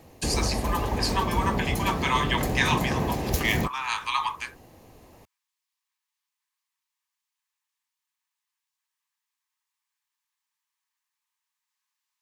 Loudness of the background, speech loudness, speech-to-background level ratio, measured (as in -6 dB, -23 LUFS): -28.5 LUFS, -28.0 LUFS, 0.5 dB